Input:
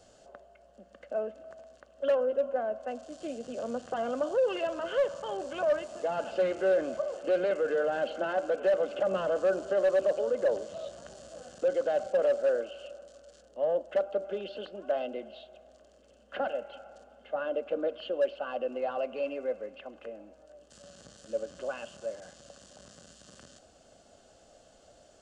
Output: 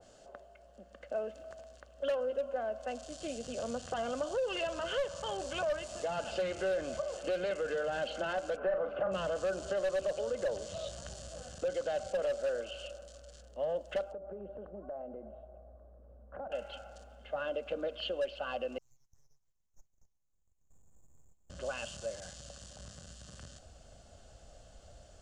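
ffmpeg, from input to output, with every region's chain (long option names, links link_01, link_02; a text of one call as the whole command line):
ffmpeg -i in.wav -filter_complex "[0:a]asettb=1/sr,asplit=3[link_01][link_02][link_03];[link_01]atrim=end=8.574[link_04];[link_02]atrim=start=8.57:end=9.12,asetpts=PTS-STARTPTS,afade=type=in:duration=0.004:curve=qsin,afade=type=out:start_time=0.546:duration=0.004:curve=qsin,lowpass=frequency=1300:width_type=q:width=1.6,asplit=2[link_05][link_06];[link_06]adelay=40,volume=-7dB[link_07];[link_05][link_07]amix=inputs=2:normalize=0,atrim=end_sample=24255[link_08];[link_03]atrim=start=9.116[link_09];[link_04][link_08]acrossfade=duration=0.004:curve1=hsin:curve2=qsin[link_10];[link_10][link_09]acrossfade=duration=0.004:curve1=qsin:curve2=hsin,asettb=1/sr,asplit=3[link_11][link_12][link_13];[link_11]atrim=end=14.124[link_14];[link_12]atrim=start=14.12:end=16.52,asetpts=PTS-STARTPTS,afade=type=in:duration=0.004:curve=qsin,afade=type=out:start_time=2.396:duration=0.004:curve=qsin,lowpass=frequency=1100:width=0.5412,lowpass=frequency=1100:width=1.3066,acompressor=threshold=-40dB:ratio=3:attack=3.2:release=140:knee=1:detection=peak[link_15];[link_13]atrim=start=16.516[link_16];[link_14][link_15]acrossfade=duration=0.004:curve1=hsin:curve2=qsin[link_17];[link_17][link_16]acrossfade=duration=0.004:curve1=qsin:curve2=hsin,asettb=1/sr,asplit=3[link_18][link_19][link_20];[link_18]atrim=end=18.784[link_21];[link_19]atrim=start=18.78:end=21.5,asetpts=PTS-STARTPTS,afade=type=in:duration=0.004:curve=qsin,afade=type=out:start_time=2.716:duration=0.004:curve=qsin,acompressor=threshold=-49dB:ratio=2:attack=3.2:release=140:knee=1:detection=peak,asuperpass=centerf=3600:order=4:qfactor=5.9,aeval=exprs='abs(val(0))':channel_layout=same[link_22];[link_20]atrim=start=21.496[link_23];[link_21][link_22]acrossfade=duration=0.004:curve1=hsin:curve2=qsin[link_24];[link_24][link_23]acrossfade=duration=0.004:curve1=qsin:curve2=hsin,asubboost=boost=6.5:cutoff=110,acompressor=threshold=-34dB:ratio=2,adynamicequalizer=threshold=0.00178:dfrequency=2400:dqfactor=0.7:tfrequency=2400:tqfactor=0.7:attack=5:release=100:ratio=0.375:range=4:mode=boostabove:tftype=highshelf" out.wav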